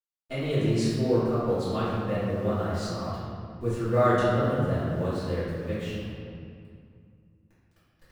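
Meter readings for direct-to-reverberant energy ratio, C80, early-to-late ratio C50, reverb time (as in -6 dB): -13.5 dB, -0.5 dB, -3.0 dB, 2.3 s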